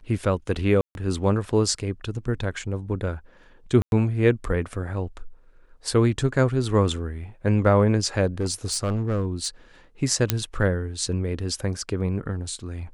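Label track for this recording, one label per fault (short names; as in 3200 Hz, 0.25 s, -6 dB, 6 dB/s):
0.810000	0.950000	gap 0.141 s
3.820000	3.920000	gap 0.101 s
8.400000	9.480000	clipped -20 dBFS
10.300000	10.300000	pop -2 dBFS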